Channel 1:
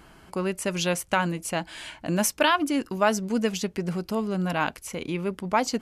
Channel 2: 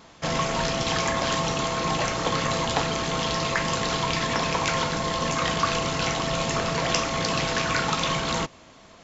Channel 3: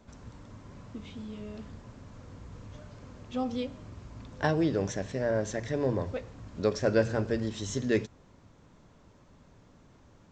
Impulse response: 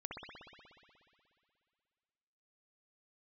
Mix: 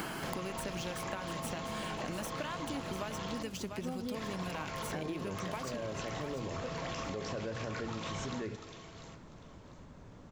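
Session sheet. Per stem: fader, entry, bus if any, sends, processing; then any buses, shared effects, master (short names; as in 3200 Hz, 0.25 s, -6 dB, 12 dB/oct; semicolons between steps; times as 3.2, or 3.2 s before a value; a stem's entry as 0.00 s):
-10.5 dB, 0.00 s, no bus, no send, echo send -11 dB, median filter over 3 samples; three-band squash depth 100%
-9.0 dB, 0.00 s, muted 3.43–4.14, bus A, no send, echo send -19.5 dB, dry
-1.5 dB, 0.50 s, bus A, send -19.5 dB, no echo send, upward compressor, threshold -43 dBFS
bus A: 0.0 dB, high shelf 3800 Hz -9.5 dB; limiter -26.5 dBFS, peak gain reduction 11.5 dB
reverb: on, RT60 2.4 s, pre-delay 60 ms
echo: feedback echo 0.695 s, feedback 25%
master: high shelf 8800 Hz +8 dB; compressor, threshold -35 dBFS, peak gain reduction 9 dB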